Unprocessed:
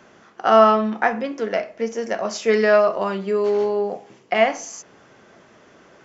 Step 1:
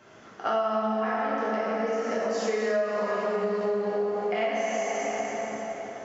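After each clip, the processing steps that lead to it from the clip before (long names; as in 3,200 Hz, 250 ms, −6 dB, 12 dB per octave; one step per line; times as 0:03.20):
dense smooth reverb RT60 4 s, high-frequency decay 0.7×, DRR −9 dB
downward compressor 6 to 1, threshold −18 dBFS, peak gain reduction 18 dB
level −7 dB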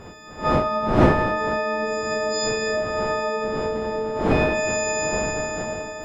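every partial snapped to a pitch grid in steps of 6 semitones
wind on the microphone 500 Hz −27 dBFS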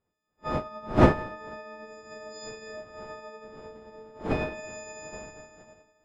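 expander for the loud parts 2.5 to 1, over −39 dBFS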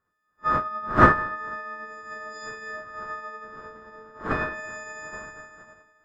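flat-topped bell 1,400 Hz +14 dB 1 octave
level −1.5 dB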